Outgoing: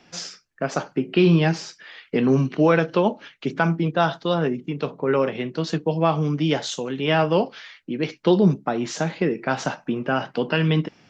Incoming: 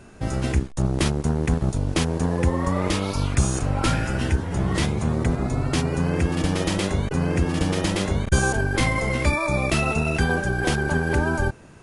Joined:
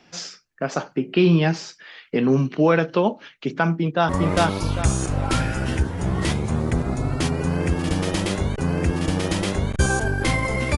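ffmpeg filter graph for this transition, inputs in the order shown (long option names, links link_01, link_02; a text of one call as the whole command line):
ffmpeg -i cue0.wav -i cue1.wav -filter_complex "[0:a]apad=whole_dur=10.77,atrim=end=10.77,atrim=end=4.092[link_01];[1:a]atrim=start=2.618:end=9.3[link_02];[link_01][link_02]acrossfade=duration=0.004:curve1=hsin:curve2=hsin,asplit=2[link_03][link_04];[link_04]afade=type=in:start_time=3.8:duration=0.01,afade=type=out:start_time=4.09:duration=0.01,aecho=0:1:400|800|1200|1600:0.944061|0.283218|0.0849655|0.0254896[link_05];[link_03][link_05]amix=inputs=2:normalize=0" out.wav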